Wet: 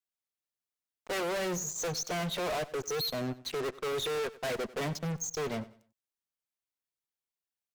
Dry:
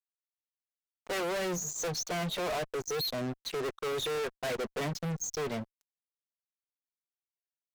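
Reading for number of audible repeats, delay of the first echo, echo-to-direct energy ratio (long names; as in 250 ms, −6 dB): 2, 95 ms, −18.0 dB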